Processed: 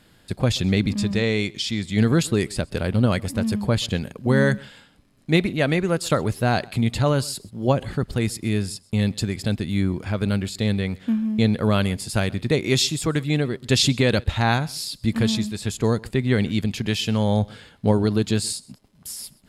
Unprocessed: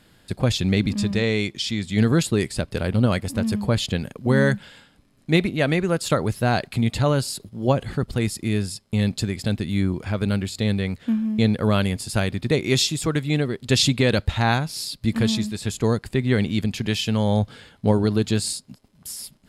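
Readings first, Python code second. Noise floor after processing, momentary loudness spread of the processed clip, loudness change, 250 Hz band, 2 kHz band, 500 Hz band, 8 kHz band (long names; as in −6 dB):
−56 dBFS, 7 LU, 0.0 dB, 0.0 dB, 0.0 dB, 0.0 dB, 0.0 dB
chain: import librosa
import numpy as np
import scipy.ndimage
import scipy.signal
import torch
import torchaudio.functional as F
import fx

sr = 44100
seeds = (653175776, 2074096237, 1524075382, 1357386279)

y = x + 10.0 ** (-24.0 / 20.0) * np.pad(x, (int(129 * sr / 1000.0), 0))[:len(x)]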